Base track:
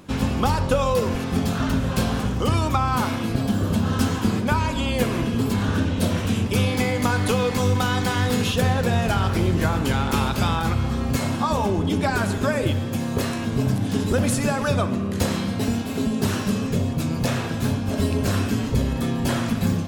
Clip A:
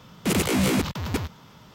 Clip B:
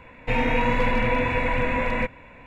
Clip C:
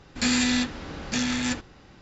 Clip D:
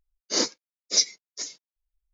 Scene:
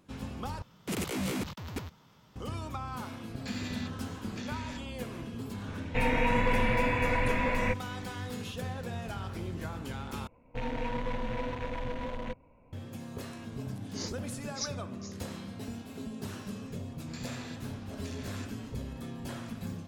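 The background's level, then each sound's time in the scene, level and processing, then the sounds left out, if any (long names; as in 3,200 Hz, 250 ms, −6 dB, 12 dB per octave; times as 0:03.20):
base track −17 dB
0:00.62: overwrite with A −11 dB
0:03.24: mix in C −16 dB + low-pass filter 5,300 Hz
0:05.67: mix in B −5 dB
0:10.27: overwrite with B −11 dB + adaptive Wiener filter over 25 samples
0:13.64: mix in D −16 dB
0:16.92: mix in C −15 dB + downward compressor 2.5 to 1, threshold −30 dBFS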